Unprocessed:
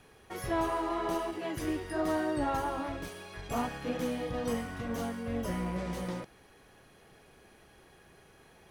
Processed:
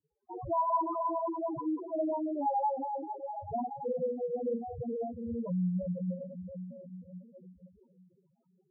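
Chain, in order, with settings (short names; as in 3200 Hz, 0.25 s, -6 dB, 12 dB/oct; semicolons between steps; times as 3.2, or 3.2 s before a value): diffused feedback echo 0.463 s, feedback 59%, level -10 dB; in parallel at +2 dB: compressor, threshold -40 dBFS, peak gain reduction 13.5 dB; on the sum: graphic EQ 125/250/500/1000 Hz +4/+4/+4/+7 dB; on a send at -12 dB: reverb RT60 0.70 s, pre-delay 3 ms; on the sum: crossover distortion -40.5 dBFS; LPF 5900 Hz; soft clip -14.5 dBFS, distortion -23 dB; dynamic EQ 270 Hz, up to -4 dB, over -39 dBFS, Q 0.98; loudest bins only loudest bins 2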